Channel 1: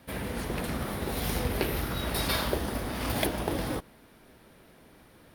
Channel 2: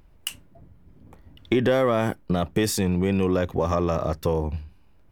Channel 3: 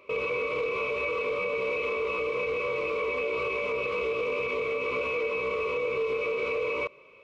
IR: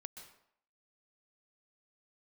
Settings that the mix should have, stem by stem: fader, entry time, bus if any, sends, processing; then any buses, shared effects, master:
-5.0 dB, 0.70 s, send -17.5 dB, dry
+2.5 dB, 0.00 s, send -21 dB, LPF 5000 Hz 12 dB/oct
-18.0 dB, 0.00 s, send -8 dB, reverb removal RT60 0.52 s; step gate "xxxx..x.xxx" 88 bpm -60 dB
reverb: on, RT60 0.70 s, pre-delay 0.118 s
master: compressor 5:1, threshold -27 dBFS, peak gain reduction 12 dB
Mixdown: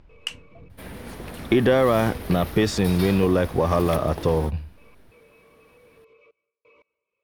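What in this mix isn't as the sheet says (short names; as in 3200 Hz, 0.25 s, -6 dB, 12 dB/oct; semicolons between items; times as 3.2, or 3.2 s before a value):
stem 2: send off; stem 3 -18.0 dB -> -26.5 dB; master: missing compressor 5:1, threshold -27 dBFS, peak gain reduction 12 dB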